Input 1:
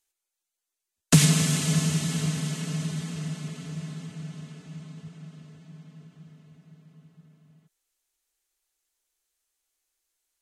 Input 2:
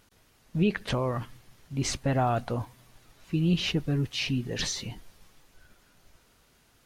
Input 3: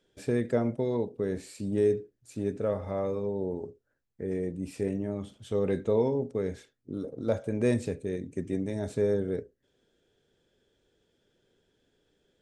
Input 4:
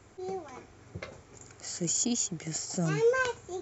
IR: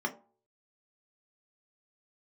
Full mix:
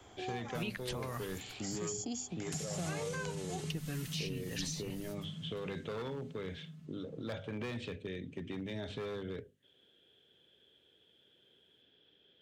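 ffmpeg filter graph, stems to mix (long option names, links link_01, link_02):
-filter_complex "[0:a]asubboost=boost=6:cutoff=160,adelay=1400,volume=-13dB[link_01];[1:a]agate=range=-29dB:threshold=-49dB:ratio=16:detection=peak,crystalizer=i=4.5:c=0,volume=-5.5dB,asplit=3[link_02][link_03][link_04];[link_02]atrim=end=1.76,asetpts=PTS-STARTPTS,afade=type=out:start_time=1.756:duration=0.004:curve=hsin[link_05];[link_03]atrim=start=1.76:end=3.7,asetpts=PTS-STARTPTS,volume=0[link_06];[link_04]atrim=start=3.7,asetpts=PTS-STARTPTS,afade=type=in:duration=0.004:curve=hsin[link_07];[link_05][link_06][link_07]concat=n=3:v=0:a=1[link_08];[2:a]acontrast=33,lowpass=frequency=3200:width_type=q:width=5.7,asoftclip=type=hard:threshold=-17.5dB,volume=-6.5dB[link_09];[3:a]equalizer=frequency=770:width_type=o:width=0.37:gain=8.5,acrossover=split=320|3000[link_10][link_11][link_12];[link_11]acompressor=threshold=-31dB:ratio=6[link_13];[link_10][link_13][link_12]amix=inputs=3:normalize=0,volume=-1dB[link_14];[link_01][link_09]amix=inputs=2:normalize=0,highpass=83,alimiter=level_in=1.5dB:limit=-24dB:level=0:latency=1:release=23,volume=-1.5dB,volume=0dB[link_15];[link_08][link_14][link_15]amix=inputs=3:normalize=0,bandreject=frequency=50:width_type=h:width=6,bandreject=frequency=100:width_type=h:width=6,bandreject=frequency=150:width_type=h:width=6,bandreject=frequency=200:width_type=h:width=6,bandreject=frequency=250:width_type=h:width=6,acrossover=split=150|1000[link_16][link_17][link_18];[link_16]acompressor=threshold=-44dB:ratio=4[link_19];[link_17]acompressor=threshold=-42dB:ratio=4[link_20];[link_18]acompressor=threshold=-42dB:ratio=4[link_21];[link_19][link_20][link_21]amix=inputs=3:normalize=0"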